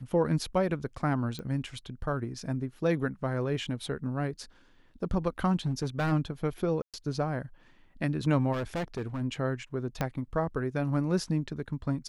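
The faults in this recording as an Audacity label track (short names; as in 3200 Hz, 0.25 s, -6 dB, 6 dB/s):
1.390000	1.390000	pop -25 dBFS
5.660000	6.130000	clipped -24.5 dBFS
6.820000	6.940000	gap 0.117 s
8.520000	9.220000	clipped -29 dBFS
10.010000	10.010000	pop -15 dBFS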